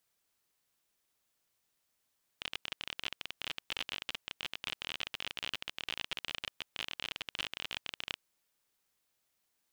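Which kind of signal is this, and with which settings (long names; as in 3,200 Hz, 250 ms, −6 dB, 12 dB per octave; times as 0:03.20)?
Geiger counter clicks 33 per second −20 dBFS 5.84 s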